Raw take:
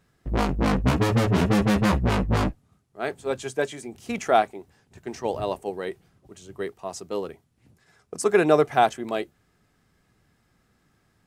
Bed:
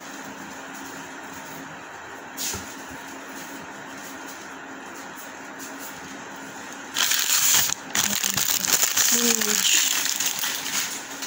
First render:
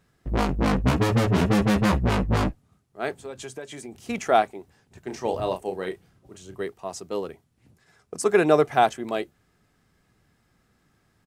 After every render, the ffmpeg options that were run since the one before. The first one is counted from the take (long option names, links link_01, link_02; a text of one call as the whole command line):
ffmpeg -i in.wav -filter_complex "[0:a]asettb=1/sr,asplit=3[link_01][link_02][link_03];[link_01]atrim=end=3.134[link_04];[link_02]atrim=start=3.13:end=4,asetpts=PTS-STARTPTS,afade=type=in:duration=0.004:curve=qsin,afade=type=out:start_time=0.866:duration=0.004:curve=qsin,acompressor=threshold=-33dB:ratio=5:attack=3.2:release=140:knee=1:detection=peak[link_05];[link_03]atrim=start=3.996[link_06];[link_04][link_05]acrossfade=duration=0.004:curve1=hsin:curve2=qsin[link_07];[link_07][link_06]acrossfade=duration=0.004:curve1=qsin:curve2=hsin,asplit=3[link_08][link_09][link_10];[link_08]afade=type=out:start_time=5.08:duration=0.02[link_11];[link_09]asplit=2[link_12][link_13];[link_13]adelay=32,volume=-7dB[link_14];[link_12][link_14]amix=inputs=2:normalize=0,afade=type=in:start_time=5.08:duration=0.02,afade=type=out:start_time=6.6:duration=0.02[link_15];[link_10]afade=type=in:start_time=6.6:duration=0.02[link_16];[link_11][link_15][link_16]amix=inputs=3:normalize=0" out.wav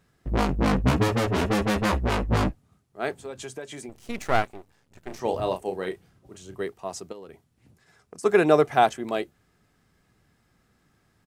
ffmpeg -i in.wav -filter_complex "[0:a]asettb=1/sr,asplit=3[link_01][link_02][link_03];[link_01]atrim=end=1.084[link_04];[link_02]atrim=start=1.08:end=2.32,asetpts=PTS-STARTPTS,afade=type=in:duration=0.004:curve=qsin,afade=type=out:start_time=1.236:duration=0.004:curve=qsin,equalizer=frequency=150:width_type=o:width=0.77:gain=-13[link_05];[link_03]atrim=start=2.316[link_06];[link_04][link_05]acrossfade=duration=0.004:curve1=hsin:curve2=qsin[link_07];[link_07][link_06]acrossfade=duration=0.004:curve1=qsin:curve2=hsin,asettb=1/sr,asplit=3[link_08][link_09][link_10];[link_08]atrim=end=3.894[link_11];[link_09]atrim=start=3.89:end=5.2,asetpts=PTS-STARTPTS,afade=type=in:duration=0.004:curve=qsin,afade=type=out:start_time=1.306:duration=0.004:curve=qsin,aeval=exprs='max(val(0),0)':channel_layout=same[link_12];[link_10]atrim=start=5.196[link_13];[link_11][link_12]acrossfade=duration=0.004:curve1=hsin:curve2=qsin[link_14];[link_14][link_13]acrossfade=duration=0.004:curve1=qsin:curve2=hsin,asplit=3[link_15][link_16][link_17];[link_15]afade=type=out:start_time=7.11:duration=0.02[link_18];[link_16]acompressor=threshold=-38dB:ratio=10:attack=3.2:release=140:knee=1:detection=peak,afade=type=in:start_time=7.11:duration=0.02,afade=type=out:start_time=8.23:duration=0.02[link_19];[link_17]afade=type=in:start_time=8.23:duration=0.02[link_20];[link_18][link_19][link_20]amix=inputs=3:normalize=0" out.wav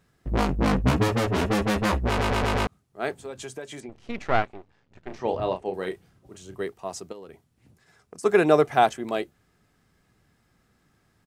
ffmpeg -i in.wav -filter_complex "[0:a]asettb=1/sr,asplit=3[link_01][link_02][link_03];[link_01]atrim=end=3.804[link_04];[link_02]atrim=start=3.8:end=5.74,asetpts=PTS-STARTPTS,afade=type=in:duration=0.004:curve=qsin,afade=type=out:start_time=1.936:duration=0.004:curve=qsin,lowpass=3900[link_05];[link_03]atrim=start=5.736[link_06];[link_04][link_05]acrossfade=duration=0.004:curve1=hsin:curve2=qsin[link_07];[link_07][link_06]acrossfade=duration=0.004:curve1=qsin:curve2=hsin,asplit=6[link_08][link_09][link_10][link_11][link_12][link_13];[link_08]atrim=end=2.192[link_14];[link_09]atrim=start=2.068:end=2.192[link_15];[link_10]atrim=start=2.068:end=2.192[link_16];[link_11]atrim=start=2.068:end=2.192[link_17];[link_12]atrim=start=2.068:end=2.192[link_18];[link_13]atrim=start=2.668[link_19];[link_14][link_15]acrossfade=duration=0.004:curve1=hsin:curve2=hsin[link_20];[link_20][link_16]acrossfade=duration=0.004:curve1=hsin:curve2=hsin[link_21];[link_21][link_17]acrossfade=duration=0.004:curve1=hsin:curve2=hsin[link_22];[link_22][link_18]acrossfade=duration=0.004:curve1=hsin:curve2=hsin[link_23];[link_23][link_19]acrossfade=duration=0.004:curve1=hsin:curve2=hsin" out.wav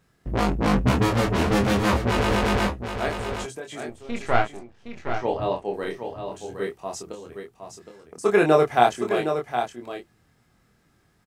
ffmpeg -i in.wav -filter_complex "[0:a]asplit=2[link_01][link_02];[link_02]adelay=25,volume=-3.5dB[link_03];[link_01][link_03]amix=inputs=2:normalize=0,aecho=1:1:765:0.398" out.wav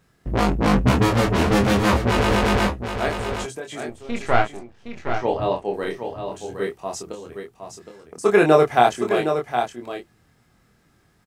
ffmpeg -i in.wav -af "volume=3dB,alimiter=limit=-1dB:level=0:latency=1" out.wav